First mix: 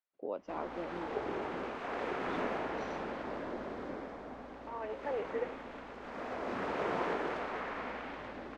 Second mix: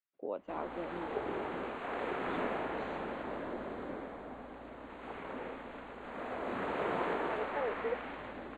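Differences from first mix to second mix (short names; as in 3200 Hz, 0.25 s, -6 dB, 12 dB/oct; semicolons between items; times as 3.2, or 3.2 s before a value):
second voice: entry +2.50 s; master: add Butterworth band-stop 5400 Hz, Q 1.8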